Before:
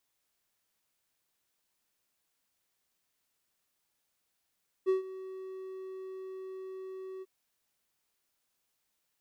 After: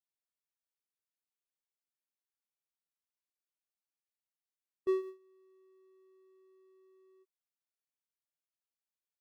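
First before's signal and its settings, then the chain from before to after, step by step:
ADSR triangle 378 Hz, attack 31 ms, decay 130 ms, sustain -17.5 dB, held 2.36 s, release 34 ms -20.5 dBFS
high-pass 260 Hz 12 dB/octave; gate with hold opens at -36 dBFS

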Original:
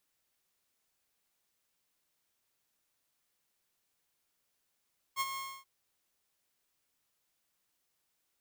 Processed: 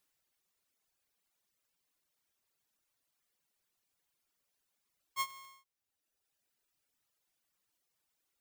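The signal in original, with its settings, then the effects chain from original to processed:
ADSR saw 1.08 kHz, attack 46 ms, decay 38 ms, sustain -8.5 dB, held 0.21 s, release 274 ms -26 dBFS
reverb removal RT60 1.5 s

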